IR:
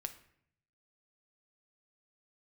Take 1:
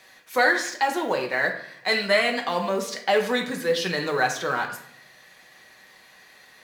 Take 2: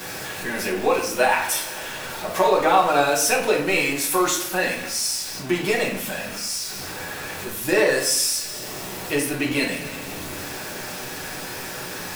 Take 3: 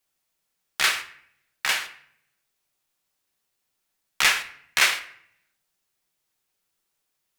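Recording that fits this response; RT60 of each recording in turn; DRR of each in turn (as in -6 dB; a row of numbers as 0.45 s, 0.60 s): 3; 0.65 s, 0.65 s, 0.65 s; 1.5 dB, -5.0 dB, 7.0 dB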